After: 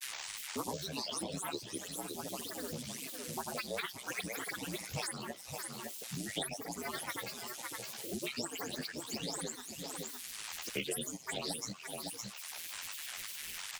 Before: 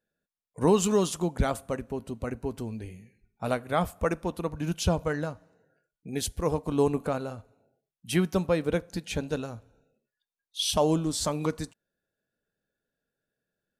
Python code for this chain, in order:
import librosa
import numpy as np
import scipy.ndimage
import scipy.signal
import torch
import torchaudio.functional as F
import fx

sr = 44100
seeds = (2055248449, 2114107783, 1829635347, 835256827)

y = fx.spec_delay(x, sr, highs='late', ms=395)
y = fx.fixed_phaser(y, sr, hz=2300.0, stages=8)
y = fx.dmg_noise_band(y, sr, seeds[0], low_hz=1400.0, high_hz=13000.0, level_db=-61.0)
y = y * np.sin(2.0 * np.pi * 67.0 * np.arange(len(y)) / sr)
y = scipy.signal.sosfilt(scipy.signal.butter(2, 580.0, 'highpass', fs=sr, output='sos'), y)
y = fx.granulator(y, sr, seeds[1], grain_ms=100.0, per_s=20.0, spray_ms=100.0, spread_st=12)
y = fx.peak_eq(y, sr, hz=1300.0, db=-14.5, octaves=2.3)
y = y + 10.0 ** (-13.5 / 20.0) * np.pad(y, (int(562 * sr / 1000.0), 0))[:len(y)]
y = fx.band_squash(y, sr, depth_pct=100)
y = F.gain(torch.from_numpy(y), 11.5).numpy()